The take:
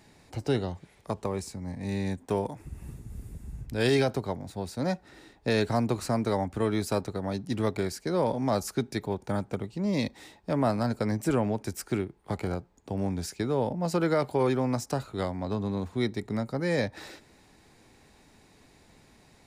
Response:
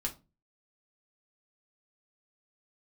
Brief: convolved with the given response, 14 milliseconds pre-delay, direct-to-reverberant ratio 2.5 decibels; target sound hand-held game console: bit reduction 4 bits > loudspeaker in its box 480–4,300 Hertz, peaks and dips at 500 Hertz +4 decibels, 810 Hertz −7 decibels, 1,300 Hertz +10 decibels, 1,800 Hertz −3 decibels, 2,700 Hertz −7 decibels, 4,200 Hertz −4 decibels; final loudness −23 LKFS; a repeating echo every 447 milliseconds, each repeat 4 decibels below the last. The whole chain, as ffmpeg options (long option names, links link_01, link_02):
-filter_complex "[0:a]aecho=1:1:447|894|1341|1788|2235|2682|3129|3576|4023:0.631|0.398|0.25|0.158|0.0994|0.0626|0.0394|0.0249|0.0157,asplit=2[link_01][link_02];[1:a]atrim=start_sample=2205,adelay=14[link_03];[link_02][link_03]afir=irnorm=-1:irlink=0,volume=-4.5dB[link_04];[link_01][link_04]amix=inputs=2:normalize=0,acrusher=bits=3:mix=0:aa=0.000001,highpass=480,equalizer=frequency=500:width_type=q:width=4:gain=4,equalizer=frequency=810:width_type=q:width=4:gain=-7,equalizer=frequency=1300:width_type=q:width=4:gain=10,equalizer=frequency=1800:width_type=q:width=4:gain=-3,equalizer=frequency=2700:width_type=q:width=4:gain=-7,equalizer=frequency=4200:width_type=q:width=4:gain=-4,lowpass=frequency=4300:width=0.5412,lowpass=frequency=4300:width=1.3066,volume=4dB"